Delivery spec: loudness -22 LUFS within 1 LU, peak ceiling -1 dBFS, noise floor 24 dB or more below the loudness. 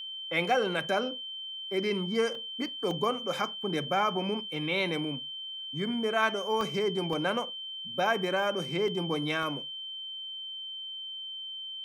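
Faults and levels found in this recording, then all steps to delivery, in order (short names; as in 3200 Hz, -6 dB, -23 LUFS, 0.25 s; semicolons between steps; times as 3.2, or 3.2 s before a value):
dropouts 7; longest dropout 1.3 ms; steady tone 3100 Hz; tone level -37 dBFS; loudness -31.0 LUFS; peak -13.0 dBFS; loudness target -22.0 LUFS
-> interpolate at 2.35/2.91/4.56/6.61/7.13/8.88/9.43, 1.3 ms; notch 3100 Hz, Q 30; gain +9 dB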